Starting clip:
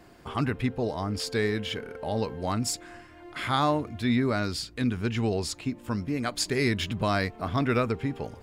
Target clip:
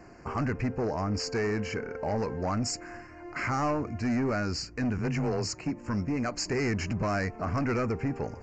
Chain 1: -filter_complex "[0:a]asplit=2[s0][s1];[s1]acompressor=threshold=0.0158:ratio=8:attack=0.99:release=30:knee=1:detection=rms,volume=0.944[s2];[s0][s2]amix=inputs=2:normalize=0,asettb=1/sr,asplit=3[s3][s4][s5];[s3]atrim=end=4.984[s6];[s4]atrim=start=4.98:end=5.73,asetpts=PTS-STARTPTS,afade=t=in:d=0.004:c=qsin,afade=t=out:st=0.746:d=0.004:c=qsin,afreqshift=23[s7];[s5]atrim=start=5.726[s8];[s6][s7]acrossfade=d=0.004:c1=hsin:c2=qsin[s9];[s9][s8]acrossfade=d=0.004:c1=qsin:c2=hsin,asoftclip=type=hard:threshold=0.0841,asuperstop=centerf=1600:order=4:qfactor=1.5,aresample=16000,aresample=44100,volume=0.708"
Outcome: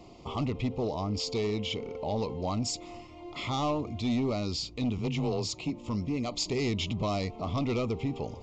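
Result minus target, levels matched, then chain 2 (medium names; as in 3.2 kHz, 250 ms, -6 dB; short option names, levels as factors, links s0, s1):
compression: peak gain reduction +7.5 dB; 2 kHz band -6.5 dB
-filter_complex "[0:a]asplit=2[s0][s1];[s1]acompressor=threshold=0.0422:ratio=8:attack=0.99:release=30:knee=1:detection=rms,volume=0.944[s2];[s0][s2]amix=inputs=2:normalize=0,asettb=1/sr,asplit=3[s3][s4][s5];[s3]atrim=end=4.984[s6];[s4]atrim=start=4.98:end=5.73,asetpts=PTS-STARTPTS,afade=t=in:d=0.004:c=qsin,afade=t=out:st=0.746:d=0.004:c=qsin,afreqshift=23[s7];[s5]atrim=start=5.726[s8];[s6][s7]acrossfade=d=0.004:c1=hsin:c2=qsin[s9];[s9][s8]acrossfade=d=0.004:c1=qsin:c2=hsin,asoftclip=type=hard:threshold=0.0841,asuperstop=centerf=3500:order=4:qfactor=1.5,aresample=16000,aresample=44100,volume=0.708"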